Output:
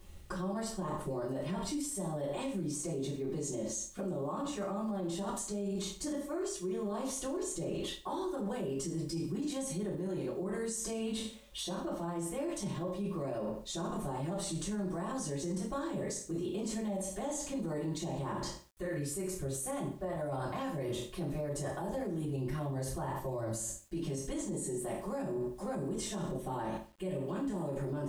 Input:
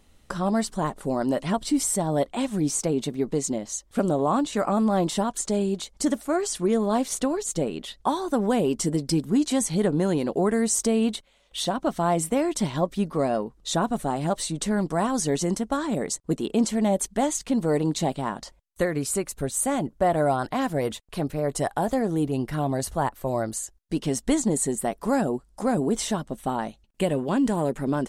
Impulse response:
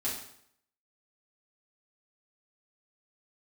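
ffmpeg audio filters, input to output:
-filter_complex "[1:a]atrim=start_sample=2205,asetrate=61740,aresample=44100[a];[0:a][a]afir=irnorm=-1:irlink=0,areverse,acompressor=threshold=-31dB:ratio=8,areverse,lowshelf=f=110:g=11,acrusher=bits=10:mix=0:aa=0.000001,alimiter=level_in=5dB:limit=-24dB:level=0:latency=1:release=46,volume=-5dB"

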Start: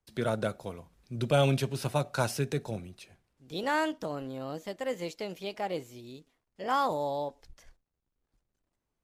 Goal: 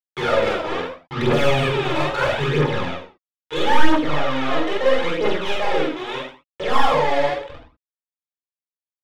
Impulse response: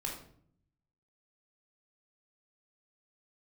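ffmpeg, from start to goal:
-filter_complex "[0:a]aresample=8000,acrusher=bits=6:mix=0:aa=0.000001,aresample=44100,asplit=2[a][b];[b]highpass=f=720:p=1,volume=30dB,asoftclip=type=tanh:threshold=-13dB[c];[a][c]amix=inputs=2:normalize=0,lowpass=f=2.6k:p=1,volume=-6dB,aecho=1:1:46.65|125.4:0.891|0.251[d];[1:a]atrim=start_sample=2205,afade=t=out:st=0.18:d=0.01,atrim=end_sample=8379[e];[d][e]afir=irnorm=-1:irlink=0,aphaser=in_gain=1:out_gain=1:delay=3.2:decay=0.52:speed=0.76:type=triangular,volume=-3dB"

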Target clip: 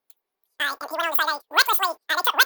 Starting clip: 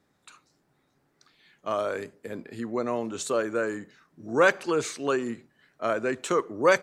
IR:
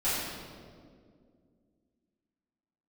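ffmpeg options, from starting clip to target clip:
-af "agate=range=-20dB:threshold=-48dB:ratio=16:detection=peak,highshelf=f=3.9k:t=q:w=1.5:g=12,asetrate=122598,aresample=44100,volume=4.5dB"

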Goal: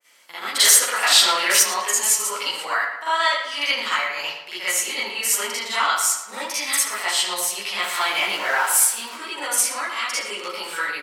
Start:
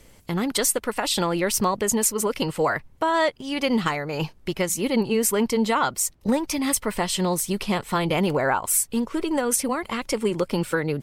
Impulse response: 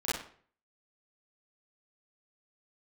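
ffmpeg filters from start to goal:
-filter_complex "[0:a]asettb=1/sr,asplit=3[a][b][c];[a]atrim=end=7.804[d];[b]atrim=start=7.8:end=9.1,asetpts=PTS-STARTPTS,afade=t=in:d=0.004:c=qsin,afade=t=out:st=1.296:d=0.004:c=qsin,aeval=exprs='val(0)+0.5*0.0251*sgn(val(0))':c=same[e];[c]atrim=start=9.096[f];[d][e]acrossfade=d=0.004:c1=hsin:c2=qsin[g];[g][f]acrossfade=d=0.004:c1=qsin:c2=hsin[h];[1:a]atrim=start_sample=2205,afade=t=out:st=0.19:d=0.01,atrim=end_sample=8820,asetrate=34398,aresample=44100[i];[h][i]afir=irnorm=-1:irlink=0,asettb=1/sr,asplit=3[j][k][l];[j]atrim=end=0.574[m];[k]atrim=start=0.57:end=1.63,asetpts=PTS-STARTPTS,afade=t=in:d=0.004:c=qsin,afade=t=out:st=1.056:d=0.004:c=qsin,acontrast=45[n];[l]atrim=start=1.626[o];[m][n]acrossfade=d=0.004:c1=hsin:c2=qsin[p];[p][o]acrossfade=d=0.004:c1=qsin:c2=hsin,highpass=1.3k,asplit=2[q][r];[r]adelay=112,lowpass=f=3.7k:p=1,volume=-9dB,asplit=2[s][t];[t]adelay=112,lowpass=f=3.7k:p=1,volume=0.51,asplit=2[u][v];[v]adelay=112,lowpass=f=3.7k:p=1,volume=0.51,asplit=2[w][x];[x]adelay=112,lowpass=f=3.7k:p=1,volume=0.51,asplit=2[y][z];[z]adelay=112,lowpass=f=3.7k:p=1,volume=0.51,asplit=2[aa][ab];[ab]adelay=112,lowpass=f=3.7k:p=1,volume=0.51[ac];[q][s][u][w][y][aa][ac]amix=inputs=7:normalize=0,adynamicequalizer=threshold=0.0355:dfrequency=1900:dqfactor=0.7:tfrequency=1900:tqfactor=0.7:attack=5:release=100:ratio=0.375:range=2:mode=boostabove:tftype=highshelf,volume=-3dB"

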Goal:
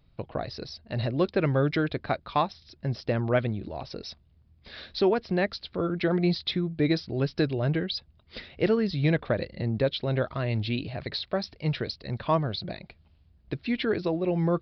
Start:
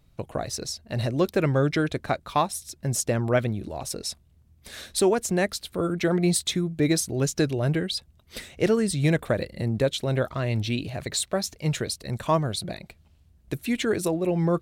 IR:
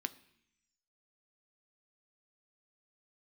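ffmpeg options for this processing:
-af "aresample=11025,aresample=44100,volume=-2dB"

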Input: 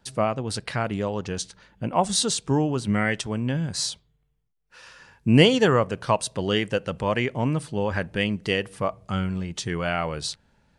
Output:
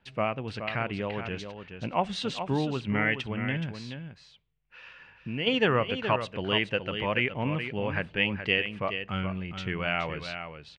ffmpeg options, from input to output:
-filter_complex "[0:a]asplit=3[a][b][c];[a]afade=t=out:st=3.7:d=0.02[d];[b]acompressor=threshold=-36dB:ratio=2,afade=t=in:st=3.7:d=0.02,afade=t=out:st=5.46:d=0.02[e];[c]afade=t=in:st=5.46:d=0.02[f];[d][e][f]amix=inputs=3:normalize=0,lowpass=f=2.6k:t=q:w=3,aecho=1:1:423:0.376,volume=-6dB"

